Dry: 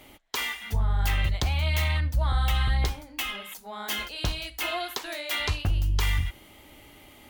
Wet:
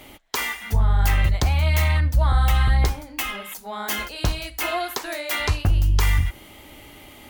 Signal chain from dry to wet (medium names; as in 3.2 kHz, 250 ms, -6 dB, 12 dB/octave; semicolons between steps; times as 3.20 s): dynamic bell 3.3 kHz, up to -7 dB, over -47 dBFS, Q 1.5; trim +6.5 dB